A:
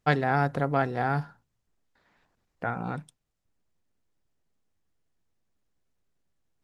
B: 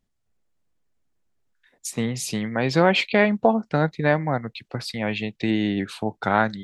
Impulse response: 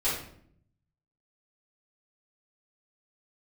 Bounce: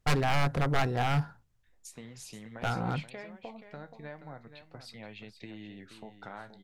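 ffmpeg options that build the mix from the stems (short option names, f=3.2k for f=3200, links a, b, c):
-filter_complex "[0:a]aeval=exprs='0.0841*(abs(mod(val(0)/0.0841+3,4)-2)-1)':c=same,lowshelf=f=140:g=9.5,volume=0dB[a];[1:a]acompressor=threshold=-26dB:ratio=3,flanger=delay=9.3:depth=6.6:regen=-67:speed=0.38:shape=sinusoidal,volume=-11.5dB,asplit=2[b][c];[c]volume=-10.5dB,aecho=0:1:477:1[d];[a][b][d]amix=inputs=3:normalize=0,equalizer=f=230:t=o:w=1.3:g=-3"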